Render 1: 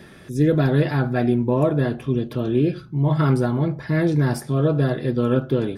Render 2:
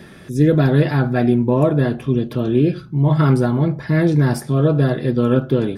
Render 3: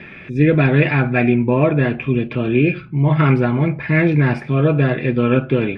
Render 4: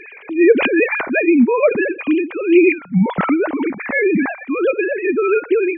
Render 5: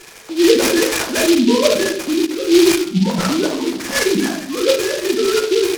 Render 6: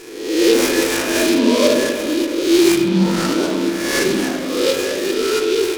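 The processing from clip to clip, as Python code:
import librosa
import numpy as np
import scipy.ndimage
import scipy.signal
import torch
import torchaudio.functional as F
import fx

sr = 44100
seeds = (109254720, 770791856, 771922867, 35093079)

y1 = fx.peak_eq(x, sr, hz=190.0, db=2.5, octaves=0.77)
y1 = F.gain(torch.from_numpy(y1), 3.0).numpy()
y2 = fx.lowpass_res(y1, sr, hz=2400.0, q=9.0)
y3 = fx.sine_speech(y2, sr)
y4 = fx.room_shoebox(y3, sr, seeds[0], volume_m3=73.0, walls='mixed', distance_m=0.82)
y4 = fx.noise_mod_delay(y4, sr, seeds[1], noise_hz=3600.0, depth_ms=0.091)
y4 = F.gain(torch.from_numpy(y4), -4.0).numpy()
y5 = fx.spec_swells(y4, sr, rise_s=0.89)
y5 = fx.rev_spring(y5, sr, rt60_s=2.9, pass_ms=(42, 53), chirp_ms=60, drr_db=5.0)
y5 = F.gain(torch.from_numpy(y5), -4.5).numpy()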